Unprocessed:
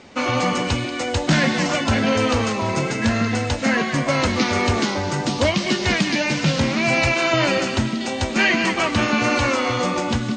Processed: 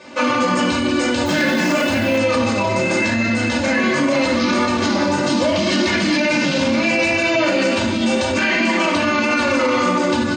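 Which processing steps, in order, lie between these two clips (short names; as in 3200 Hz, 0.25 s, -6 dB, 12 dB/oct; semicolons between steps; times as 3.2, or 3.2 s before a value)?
comb 3.4 ms, depth 69%; shoebox room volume 720 m³, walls furnished, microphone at 5.3 m; 1.25–2.17 added noise white -37 dBFS; limiter -7.5 dBFS, peak gain reduction 11 dB; HPF 160 Hz 12 dB/oct; gain -1 dB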